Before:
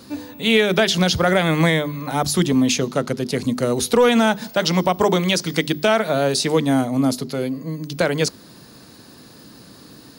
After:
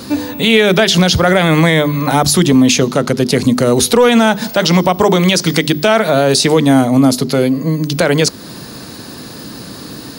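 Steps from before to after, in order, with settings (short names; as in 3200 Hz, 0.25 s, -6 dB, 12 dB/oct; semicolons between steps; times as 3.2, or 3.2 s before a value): in parallel at +1 dB: compressor, threshold -27 dBFS, peak gain reduction 15 dB; on the sum: maximiser +8.5 dB; gain -1 dB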